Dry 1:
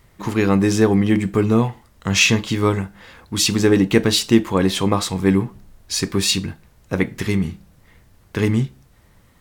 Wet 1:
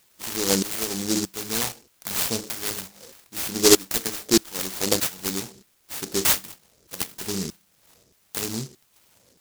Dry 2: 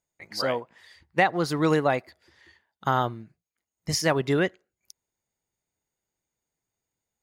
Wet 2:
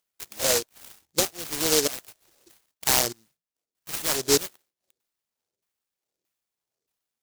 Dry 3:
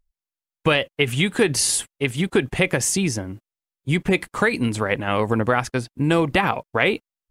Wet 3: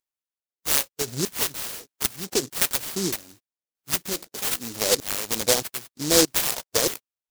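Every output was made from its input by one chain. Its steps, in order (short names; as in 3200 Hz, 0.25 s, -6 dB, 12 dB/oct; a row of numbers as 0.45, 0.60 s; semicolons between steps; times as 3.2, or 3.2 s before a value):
bell 8500 Hz +15 dB 0.47 oct; LFO band-pass saw down 1.6 Hz 370–4900 Hz; harmonic-percussive split percussive -4 dB; in parallel at 0 dB: compressor, threshold -37 dBFS; on the sum: noise-modulated delay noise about 5600 Hz, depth 0.31 ms; match loudness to -24 LUFS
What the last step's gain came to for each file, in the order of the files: +3.5, +5.5, +4.5 dB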